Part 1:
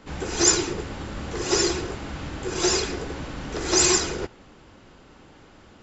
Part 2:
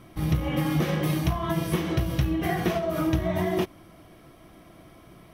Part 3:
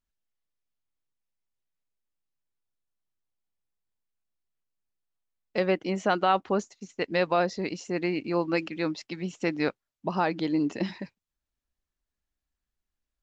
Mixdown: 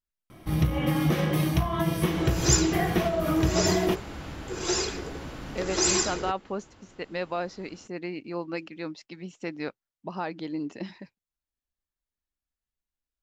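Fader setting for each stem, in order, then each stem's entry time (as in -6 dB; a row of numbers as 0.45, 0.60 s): -5.0, +0.5, -6.5 dB; 2.05, 0.30, 0.00 s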